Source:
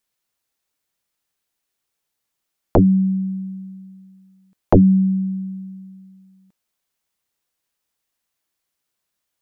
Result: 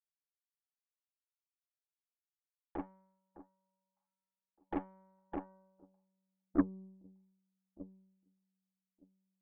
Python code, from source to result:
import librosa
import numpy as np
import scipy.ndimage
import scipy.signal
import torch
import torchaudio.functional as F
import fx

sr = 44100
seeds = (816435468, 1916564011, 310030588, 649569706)

p1 = fx.halfwave_hold(x, sr)
p2 = scipy.signal.sosfilt(scipy.signal.butter(2, 130.0, 'highpass', fs=sr, output='sos'), p1)
p3 = p2 + fx.echo_alternate(p2, sr, ms=608, hz=1100.0, feedback_pct=68, wet_db=-6.0, dry=0)
p4 = fx.filter_sweep_bandpass(p3, sr, from_hz=1400.0, to_hz=220.0, start_s=4.91, end_s=6.84, q=1.5)
p5 = fx.formant_cascade(p4, sr, vowel='u')
p6 = fx.cheby_harmonics(p5, sr, harmonics=(6,), levels_db=(-17,), full_scale_db=-20.0)
p7 = fx.upward_expand(p6, sr, threshold_db=-50.0, expansion=2.5)
y = p7 * librosa.db_to_amplitude(3.5)